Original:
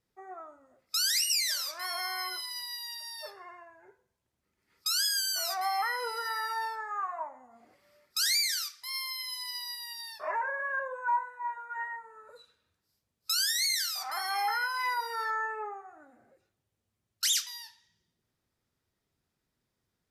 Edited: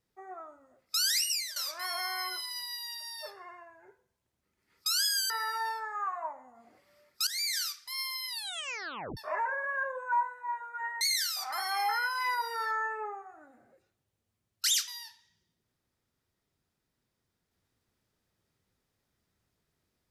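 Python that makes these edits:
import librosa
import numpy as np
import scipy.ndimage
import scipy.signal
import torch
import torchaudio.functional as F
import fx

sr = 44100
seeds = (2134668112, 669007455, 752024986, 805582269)

y = fx.edit(x, sr, fx.fade_out_to(start_s=1.02, length_s=0.54, curve='qsin', floor_db=-15.5),
    fx.cut(start_s=5.3, length_s=0.96),
    fx.fade_in_from(start_s=8.23, length_s=0.34, floor_db=-14.5),
    fx.tape_stop(start_s=9.24, length_s=0.89),
    fx.cut(start_s=11.97, length_s=1.63), tone=tone)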